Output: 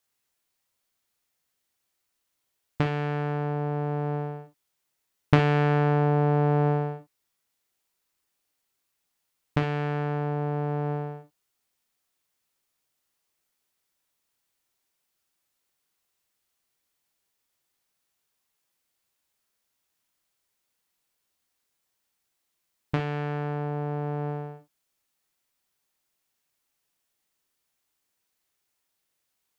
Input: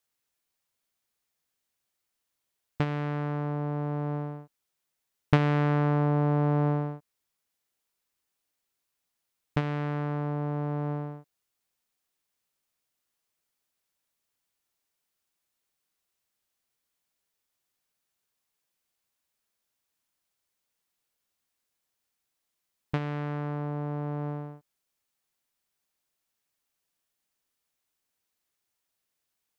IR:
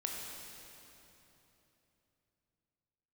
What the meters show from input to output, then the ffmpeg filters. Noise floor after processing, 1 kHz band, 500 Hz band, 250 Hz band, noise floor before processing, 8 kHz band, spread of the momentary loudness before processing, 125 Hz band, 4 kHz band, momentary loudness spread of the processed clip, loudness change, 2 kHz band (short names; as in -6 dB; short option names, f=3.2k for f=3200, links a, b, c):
-79 dBFS, +4.0 dB, +5.0 dB, +1.0 dB, -83 dBFS, n/a, 11 LU, +2.0 dB, +4.0 dB, 11 LU, +2.5 dB, +4.0 dB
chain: -filter_complex "[1:a]atrim=start_sample=2205,atrim=end_sample=3087[a];[0:a][a]afir=irnorm=-1:irlink=0,volume=4.5dB"